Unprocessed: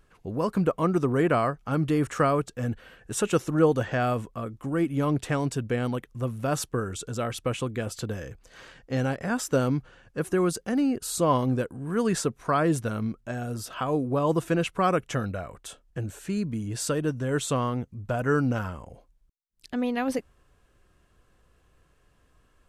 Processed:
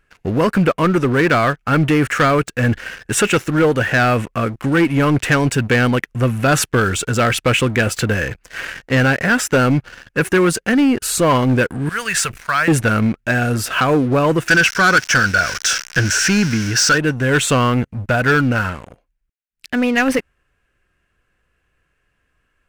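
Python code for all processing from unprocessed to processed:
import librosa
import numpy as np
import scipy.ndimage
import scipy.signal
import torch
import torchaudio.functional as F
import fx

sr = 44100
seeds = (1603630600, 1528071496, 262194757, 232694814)

y = fx.chain(x, sr, fx.tone_stack(knobs='10-0-10'),
    fx.sustainer(db_per_s=110.0), at=(11.89, 12.68))
y = fx.chain(y, sr, fx.crossing_spikes(level_db=-29.5),
    fx.lowpass_res(hz=5600.0, q=6.4),
    fx.peak_eq(hz=1500.0, db=15.0, octaves=0.31), at=(14.48, 16.98))
y = fx.band_shelf(y, sr, hz=2000.0, db=9.5, octaves=1.2)
y = fx.rider(y, sr, range_db=3, speed_s=0.5)
y = fx.leveller(y, sr, passes=3)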